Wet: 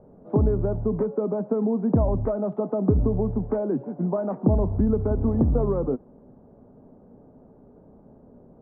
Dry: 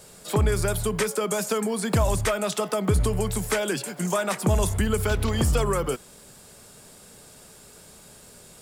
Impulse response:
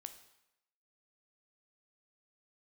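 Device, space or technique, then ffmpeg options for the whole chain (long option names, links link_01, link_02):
under water: -af "lowpass=frequency=830:width=0.5412,lowpass=frequency=830:width=1.3066,equalizer=frequency=260:width_type=o:width=0.54:gain=10"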